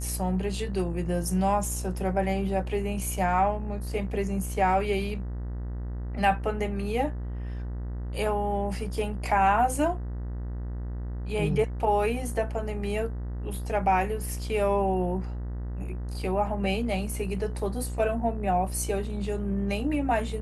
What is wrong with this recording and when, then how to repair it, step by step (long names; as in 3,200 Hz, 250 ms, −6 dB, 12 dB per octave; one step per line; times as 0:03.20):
mains buzz 60 Hz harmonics 33 −33 dBFS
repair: hum removal 60 Hz, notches 33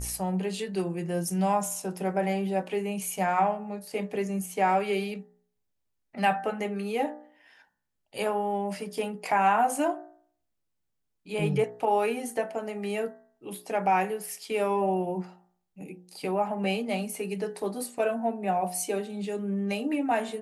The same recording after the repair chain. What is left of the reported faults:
none of them is left